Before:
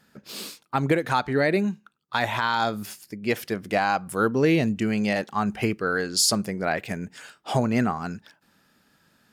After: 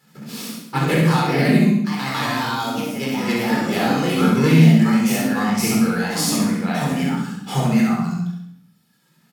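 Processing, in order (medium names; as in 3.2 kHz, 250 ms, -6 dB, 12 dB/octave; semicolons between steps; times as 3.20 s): formants flattened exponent 0.6; high-pass 100 Hz; peaking EQ 190 Hz +11 dB 0.55 oct; in parallel at -1.5 dB: compression, threshold -33 dBFS, peak gain reduction 18.5 dB; on the sum: reverb removal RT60 1.6 s; on a send: feedback delay 68 ms, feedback 47%, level -3.5 dB; on the sum: ever faster or slower copies 82 ms, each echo +2 st, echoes 2; simulated room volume 1000 m³, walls furnished, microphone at 4.1 m; trim -7.5 dB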